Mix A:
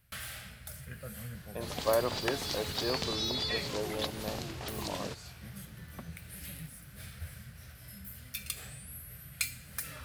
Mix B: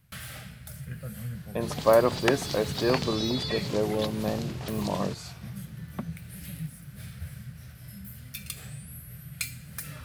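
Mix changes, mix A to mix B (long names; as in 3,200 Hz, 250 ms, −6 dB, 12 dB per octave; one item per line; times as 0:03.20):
speech +8.0 dB
master: add parametric band 150 Hz +10.5 dB 1.2 octaves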